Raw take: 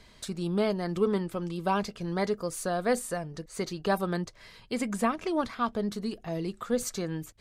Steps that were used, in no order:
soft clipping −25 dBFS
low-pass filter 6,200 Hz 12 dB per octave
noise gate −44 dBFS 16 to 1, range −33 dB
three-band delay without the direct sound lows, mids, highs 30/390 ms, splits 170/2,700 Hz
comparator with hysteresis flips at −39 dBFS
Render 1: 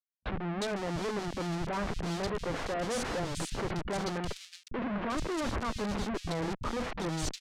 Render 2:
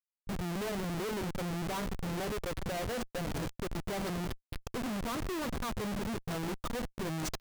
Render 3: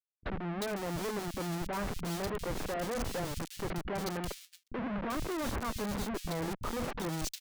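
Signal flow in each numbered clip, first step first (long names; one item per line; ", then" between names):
comparator with hysteresis, then soft clipping, then three-band delay without the direct sound, then noise gate, then low-pass filter
low-pass filter, then soft clipping, then three-band delay without the direct sound, then comparator with hysteresis, then noise gate
soft clipping, then low-pass filter, then comparator with hysteresis, then three-band delay without the direct sound, then noise gate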